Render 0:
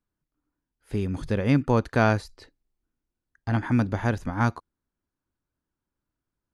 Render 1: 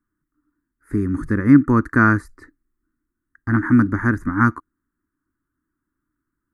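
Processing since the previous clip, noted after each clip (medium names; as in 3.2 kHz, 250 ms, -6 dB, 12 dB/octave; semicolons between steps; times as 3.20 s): FFT filter 180 Hz 0 dB, 310 Hz +10 dB, 480 Hz -10 dB, 750 Hz -15 dB, 1.2 kHz +8 dB, 1.9 kHz +5 dB, 2.9 kHz -27 dB, 8.3 kHz -2 dB; trim +4 dB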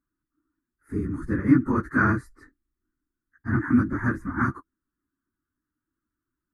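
phase randomisation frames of 50 ms; trim -6.5 dB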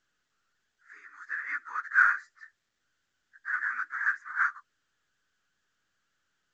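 ladder high-pass 1.4 kHz, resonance 50%; trim +7 dB; µ-law 128 kbps 16 kHz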